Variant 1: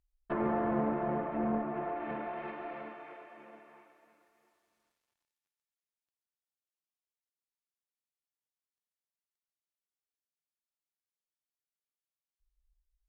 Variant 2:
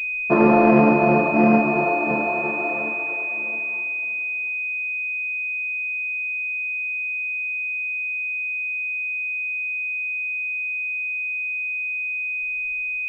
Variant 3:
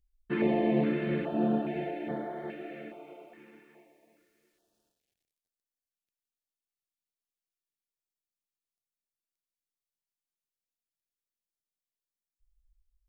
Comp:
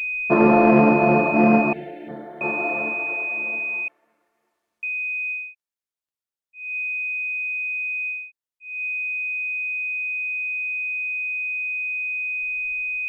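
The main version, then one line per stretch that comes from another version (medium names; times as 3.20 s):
2
1.73–2.41 s: from 3
3.88–4.83 s: from 1
5.43–6.65 s: from 1, crossfade 0.24 s
8.20–8.72 s: from 1, crossfade 0.24 s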